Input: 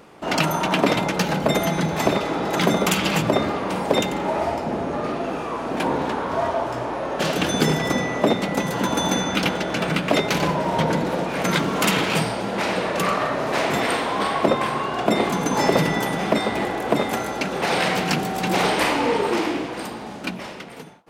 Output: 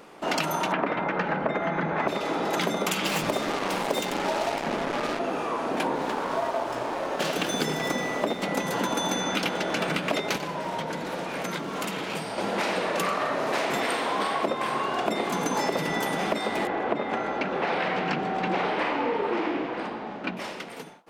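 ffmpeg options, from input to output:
-filter_complex "[0:a]asettb=1/sr,asplit=3[s0][s1][s2];[s0]atrim=end=0.724[s3];[s1]atrim=start=0.72:end=2.08,asetpts=PTS-STARTPTS,afade=t=in:d=0.004:c=qsin,afade=t=out:st=1.356:d=0.004:c=qsin,lowpass=f=1700:t=q:w=1.6[s4];[s2]atrim=start=2.076[s5];[s3][s4]acrossfade=d=0.004:c1=hsin:c2=qsin[s6];[s6][s5]acrossfade=d=0.004:c1=qsin:c2=hsin,asettb=1/sr,asplit=3[s7][s8][s9];[s7]atrim=end=3.064[s10];[s8]atrim=start=3.06:end=5.19,asetpts=PTS-STARTPTS,afade=t=in:d=0.004:c=qsin,afade=t=out:st=2.126:d=0.004:c=qsin,acrusher=bits=3:mix=0:aa=0.5[s11];[s9]atrim=start=5.186[s12];[s10][s11]acrossfade=d=0.004:c1=hsin:c2=qsin[s13];[s13][s12]acrossfade=d=0.004:c1=qsin:c2=hsin,asettb=1/sr,asplit=3[s14][s15][s16];[s14]atrim=end=5.954[s17];[s15]atrim=start=5.95:end=8.43,asetpts=PTS-STARTPTS,afade=t=in:d=0.004:c=qsin,afade=t=out:st=2.476:d=0.004:c=qsin,aeval=exprs='sgn(val(0))*max(abs(val(0))-0.0133,0)':c=same[s18];[s16]atrim=start=8.426[s19];[s17][s18]acrossfade=d=0.004:c1=hsin:c2=qsin[s20];[s20][s19]acrossfade=d=0.004:c1=qsin:c2=hsin,asettb=1/sr,asplit=3[s21][s22][s23];[s21]atrim=end=10.364[s24];[s22]atrim=start=10.36:end=12.38,asetpts=PTS-STARTPTS,afade=t=in:d=0.004:c=qsin,afade=t=out:st=2.016:d=0.004:c=qsin,acrossover=split=160|1100[s25][s26][s27];[s25]acompressor=threshold=0.0112:ratio=4[s28];[s26]acompressor=threshold=0.0251:ratio=4[s29];[s27]acompressor=threshold=0.0158:ratio=4[s30];[s28][s29][s30]amix=inputs=3:normalize=0[s31];[s23]atrim=start=12.376[s32];[s24][s31]acrossfade=d=0.004:c1=hsin:c2=qsin[s33];[s33][s32]acrossfade=d=0.004:c1=qsin:c2=hsin,asettb=1/sr,asplit=3[s34][s35][s36];[s34]atrim=end=16.674[s37];[s35]atrim=start=16.67:end=20.37,asetpts=PTS-STARTPTS,afade=t=in:d=0.004:c=qsin,afade=t=out:st=3.696:d=0.004:c=qsin,lowpass=2500[s38];[s36]atrim=start=20.366[s39];[s37][s38]acrossfade=d=0.004:c1=hsin:c2=qsin[s40];[s40][s39]acrossfade=d=0.004:c1=qsin:c2=hsin,equalizer=f=82:w=0.91:g=-14.5,acompressor=threshold=0.0708:ratio=6"

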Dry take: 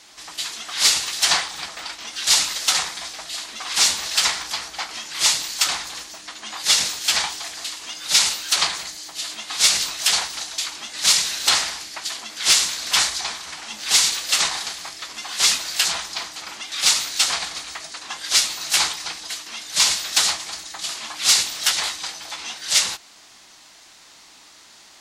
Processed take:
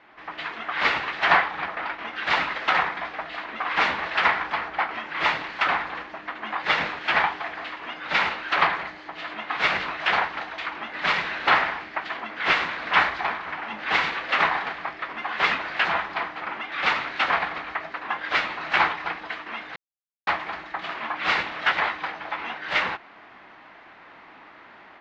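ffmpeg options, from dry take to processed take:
-filter_complex "[0:a]asplit=3[s0][s1][s2];[s0]atrim=end=19.76,asetpts=PTS-STARTPTS,afade=t=out:st=19.756:d=0.004:c=hsin[s3];[s1]atrim=start=19.76:end=20.27,asetpts=PTS-STARTPTS,volume=0[s4];[s2]atrim=start=20.27,asetpts=PTS-STARTPTS,afade=t=in:d=0.004:c=hsin[s5];[s3][s4][s5]concat=n=3:v=0:a=1,lowpass=f=2100:w=0.5412,lowpass=f=2100:w=1.3066,lowshelf=f=110:g=-10,dynaudnorm=f=160:g=3:m=2,volume=1.19"

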